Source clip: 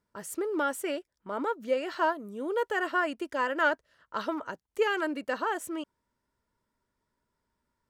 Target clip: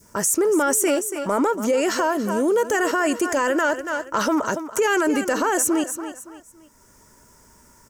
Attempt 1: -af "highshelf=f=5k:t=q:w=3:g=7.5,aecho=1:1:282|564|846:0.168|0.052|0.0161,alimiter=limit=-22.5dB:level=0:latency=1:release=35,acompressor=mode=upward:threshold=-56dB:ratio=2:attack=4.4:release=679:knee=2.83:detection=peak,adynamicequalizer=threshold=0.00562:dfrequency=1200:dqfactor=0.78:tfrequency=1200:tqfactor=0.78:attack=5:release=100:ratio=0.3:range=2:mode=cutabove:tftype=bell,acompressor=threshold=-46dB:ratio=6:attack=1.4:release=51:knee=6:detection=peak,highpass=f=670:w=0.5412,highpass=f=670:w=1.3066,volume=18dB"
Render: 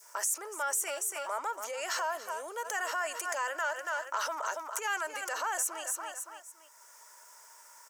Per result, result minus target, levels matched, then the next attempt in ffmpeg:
compressor: peak gain reduction +10 dB; 500 Hz band -6.0 dB
-af "highshelf=f=5k:t=q:w=3:g=7.5,aecho=1:1:282|564|846:0.168|0.052|0.0161,alimiter=limit=-22.5dB:level=0:latency=1:release=35,acompressor=mode=upward:threshold=-56dB:ratio=2:attack=4.4:release=679:knee=2.83:detection=peak,adynamicequalizer=threshold=0.00562:dfrequency=1200:dqfactor=0.78:tfrequency=1200:tqfactor=0.78:attack=5:release=100:ratio=0.3:range=2:mode=cutabove:tftype=bell,acompressor=threshold=-34dB:ratio=6:attack=1.4:release=51:knee=6:detection=peak,highpass=f=670:w=0.5412,highpass=f=670:w=1.3066,volume=18dB"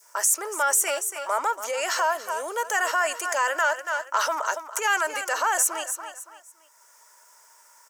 500 Hz band -6.0 dB
-af "highshelf=f=5k:t=q:w=3:g=7.5,aecho=1:1:282|564|846:0.168|0.052|0.0161,alimiter=limit=-22.5dB:level=0:latency=1:release=35,acompressor=mode=upward:threshold=-56dB:ratio=2:attack=4.4:release=679:knee=2.83:detection=peak,adynamicequalizer=threshold=0.00562:dfrequency=1200:dqfactor=0.78:tfrequency=1200:tqfactor=0.78:attack=5:release=100:ratio=0.3:range=2:mode=cutabove:tftype=bell,acompressor=threshold=-34dB:ratio=6:attack=1.4:release=51:knee=6:detection=peak,volume=18dB"

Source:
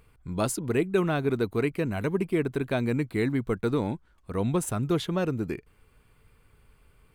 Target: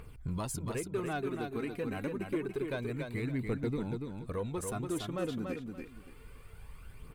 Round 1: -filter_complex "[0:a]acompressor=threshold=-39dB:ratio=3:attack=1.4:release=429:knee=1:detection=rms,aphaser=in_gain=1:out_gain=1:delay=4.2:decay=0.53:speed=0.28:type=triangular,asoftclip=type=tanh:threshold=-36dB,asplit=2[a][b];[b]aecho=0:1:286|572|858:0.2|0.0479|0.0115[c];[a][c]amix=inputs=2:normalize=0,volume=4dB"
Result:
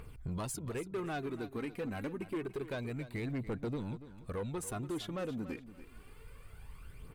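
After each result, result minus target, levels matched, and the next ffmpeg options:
echo-to-direct -9 dB; soft clip: distortion +8 dB
-filter_complex "[0:a]acompressor=threshold=-39dB:ratio=3:attack=1.4:release=429:knee=1:detection=rms,aphaser=in_gain=1:out_gain=1:delay=4.2:decay=0.53:speed=0.28:type=triangular,asoftclip=type=tanh:threshold=-36dB,asplit=2[a][b];[b]aecho=0:1:286|572|858:0.562|0.135|0.0324[c];[a][c]amix=inputs=2:normalize=0,volume=4dB"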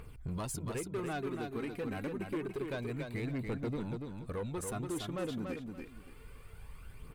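soft clip: distortion +8 dB
-filter_complex "[0:a]acompressor=threshold=-39dB:ratio=3:attack=1.4:release=429:knee=1:detection=rms,aphaser=in_gain=1:out_gain=1:delay=4.2:decay=0.53:speed=0.28:type=triangular,asoftclip=type=tanh:threshold=-29dB,asplit=2[a][b];[b]aecho=0:1:286|572|858:0.562|0.135|0.0324[c];[a][c]amix=inputs=2:normalize=0,volume=4dB"

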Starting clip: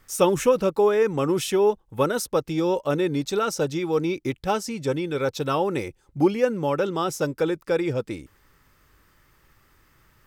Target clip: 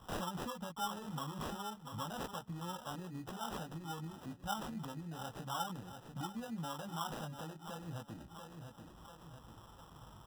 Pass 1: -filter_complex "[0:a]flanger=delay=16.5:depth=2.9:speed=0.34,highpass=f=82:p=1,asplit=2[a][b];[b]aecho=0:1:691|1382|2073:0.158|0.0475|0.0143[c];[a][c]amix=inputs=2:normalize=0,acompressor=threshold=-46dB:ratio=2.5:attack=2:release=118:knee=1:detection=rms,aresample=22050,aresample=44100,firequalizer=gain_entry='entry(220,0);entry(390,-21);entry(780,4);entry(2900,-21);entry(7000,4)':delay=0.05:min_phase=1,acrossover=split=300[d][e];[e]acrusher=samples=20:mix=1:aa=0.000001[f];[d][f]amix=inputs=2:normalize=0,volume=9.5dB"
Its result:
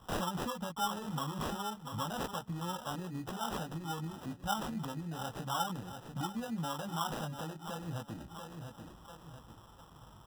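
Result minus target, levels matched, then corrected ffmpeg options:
compressor: peak gain reduction -5 dB
-filter_complex "[0:a]flanger=delay=16.5:depth=2.9:speed=0.34,highpass=f=82:p=1,asplit=2[a][b];[b]aecho=0:1:691|1382|2073:0.158|0.0475|0.0143[c];[a][c]amix=inputs=2:normalize=0,acompressor=threshold=-54dB:ratio=2.5:attack=2:release=118:knee=1:detection=rms,aresample=22050,aresample=44100,firequalizer=gain_entry='entry(220,0);entry(390,-21);entry(780,4);entry(2900,-21);entry(7000,4)':delay=0.05:min_phase=1,acrossover=split=300[d][e];[e]acrusher=samples=20:mix=1:aa=0.000001[f];[d][f]amix=inputs=2:normalize=0,volume=9.5dB"

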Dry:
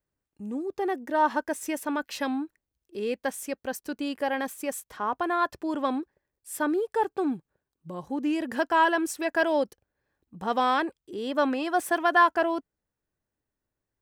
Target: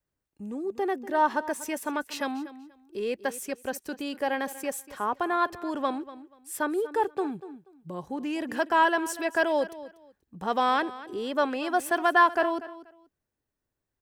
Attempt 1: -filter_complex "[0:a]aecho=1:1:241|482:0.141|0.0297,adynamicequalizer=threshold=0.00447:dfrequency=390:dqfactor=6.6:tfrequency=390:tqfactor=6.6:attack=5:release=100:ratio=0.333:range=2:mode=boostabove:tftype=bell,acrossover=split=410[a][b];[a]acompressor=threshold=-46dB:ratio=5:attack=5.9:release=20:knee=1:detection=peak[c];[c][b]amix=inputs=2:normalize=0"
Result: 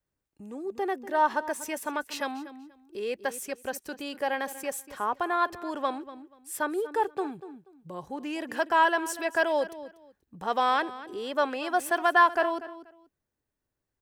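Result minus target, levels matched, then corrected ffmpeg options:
compressor: peak gain reduction +7.5 dB
-filter_complex "[0:a]aecho=1:1:241|482:0.141|0.0297,adynamicequalizer=threshold=0.00447:dfrequency=390:dqfactor=6.6:tfrequency=390:tqfactor=6.6:attack=5:release=100:ratio=0.333:range=2:mode=boostabove:tftype=bell,acrossover=split=410[a][b];[a]acompressor=threshold=-36.5dB:ratio=5:attack=5.9:release=20:knee=1:detection=peak[c];[c][b]amix=inputs=2:normalize=0"

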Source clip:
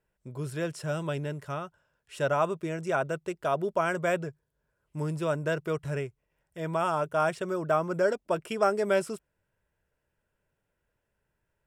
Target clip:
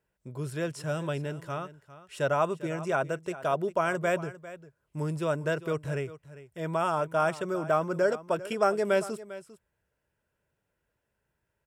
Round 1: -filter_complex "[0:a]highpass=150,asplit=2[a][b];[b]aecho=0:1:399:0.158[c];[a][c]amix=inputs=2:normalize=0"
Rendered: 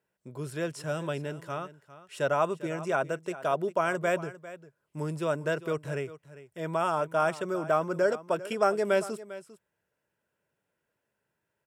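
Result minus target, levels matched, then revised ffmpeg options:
125 Hz band -2.5 dB
-filter_complex "[0:a]highpass=44,asplit=2[a][b];[b]aecho=0:1:399:0.158[c];[a][c]amix=inputs=2:normalize=0"

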